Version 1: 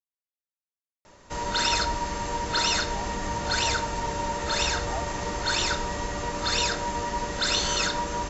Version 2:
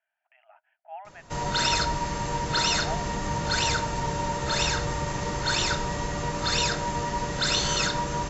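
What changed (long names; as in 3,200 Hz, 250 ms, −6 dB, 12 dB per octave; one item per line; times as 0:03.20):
speech: entry −2.05 s
master: add parametric band 140 Hz +13 dB 0.41 octaves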